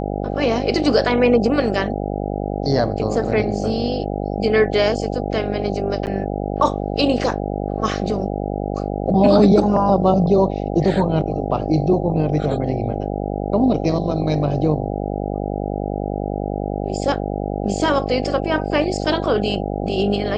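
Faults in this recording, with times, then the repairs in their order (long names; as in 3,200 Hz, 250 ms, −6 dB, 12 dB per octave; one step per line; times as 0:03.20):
mains buzz 50 Hz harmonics 16 −24 dBFS
0:06.06–0:06.07: drop-out 9 ms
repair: hum removal 50 Hz, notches 16
repair the gap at 0:06.06, 9 ms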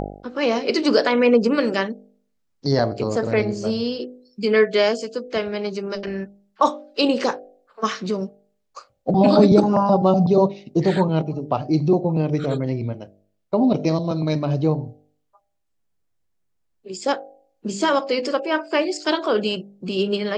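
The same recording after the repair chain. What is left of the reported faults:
none of them is left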